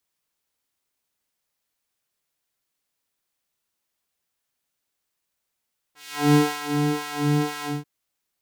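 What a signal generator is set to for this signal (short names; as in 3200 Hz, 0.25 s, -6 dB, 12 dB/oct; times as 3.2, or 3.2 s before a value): synth patch with filter wobble D4, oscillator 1 triangle, oscillator 2 square, interval -12 st, oscillator 2 level -2 dB, noise -27 dB, filter highpass, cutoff 180 Hz, Q 0.83, filter envelope 2.5 oct, filter decay 0.60 s, attack 0.395 s, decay 0.26 s, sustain -7 dB, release 0.19 s, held 1.70 s, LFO 2 Hz, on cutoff 1.7 oct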